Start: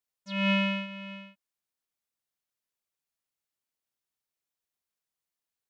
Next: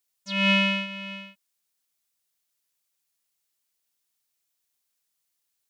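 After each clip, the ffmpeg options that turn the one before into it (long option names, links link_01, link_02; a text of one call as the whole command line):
ffmpeg -i in.wav -af "highshelf=frequency=2500:gain=10.5,volume=2dB" out.wav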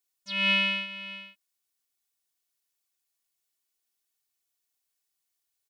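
ffmpeg -i in.wav -af "aecho=1:1:2.7:0.54,volume=-4.5dB" out.wav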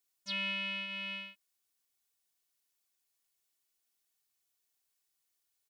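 ffmpeg -i in.wav -af "acompressor=threshold=-33dB:ratio=10" out.wav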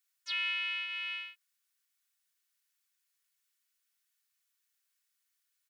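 ffmpeg -i in.wav -af "highpass=frequency=1500:width_type=q:width=1.7" out.wav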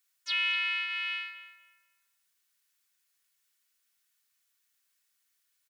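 ffmpeg -i in.wav -filter_complex "[0:a]asplit=2[link_01][link_02];[link_02]adelay=242,lowpass=frequency=1900:poles=1,volume=-9dB,asplit=2[link_03][link_04];[link_04]adelay=242,lowpass=frequency=1900:poles=1,volume=0.34,asplit=2[link_05][link_06];[link_06]adelay=242,lowpass=frequency=1900:poles=1,volume=0.34,asplit=2[link_07][link_08];[link_08]adelay=242,lowpass=frequency=1900:poles=1,volume=0.34[link_09];[link_01][link_03][link_05][link_07][link_09]amix=inputs=5:normalize=0,volume=4.5dB" out.wav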